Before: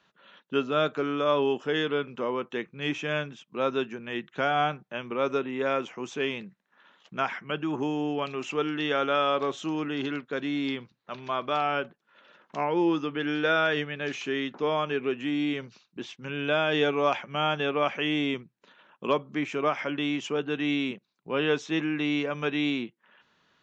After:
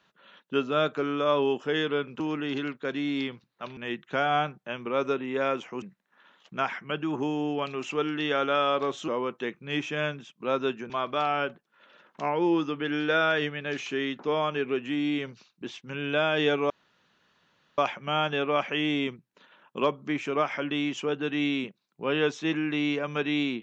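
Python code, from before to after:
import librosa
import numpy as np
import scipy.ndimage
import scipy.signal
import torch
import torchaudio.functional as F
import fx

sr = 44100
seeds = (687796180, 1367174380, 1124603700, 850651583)

y = fx.edit(x, sr, fx.swap(start_s=2.2, length_s=1.82, other_s=9.68, other_length_s=1.57),
    fx.cut(start_s=6.07, length_s=0.35),
    fx.insert_room_tone(at_s=17.05, length_s=1.08), tone=tone)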